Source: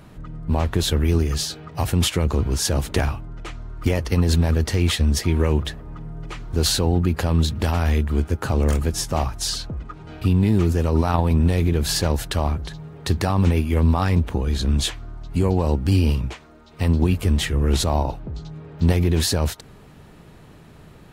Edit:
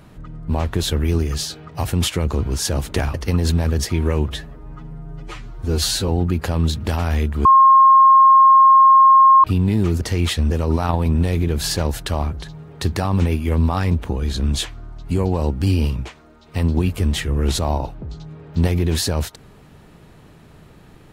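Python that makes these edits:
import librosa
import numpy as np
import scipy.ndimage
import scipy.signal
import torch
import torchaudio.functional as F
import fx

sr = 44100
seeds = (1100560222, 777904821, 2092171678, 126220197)

y = fx.edit(x, sr, fx.cut(start_s=3.14, length_s=0.84),
    fx.move(start_s=4.63, length_s=0.5, to_s=10.76),
    fx.stretch_span(start_s=5.65, length_s=1.18, factor=1.5),
    fx.bleep(start_s=8.2, length_s=1.99, hz=1070.0, db=-6.5), tone=tone)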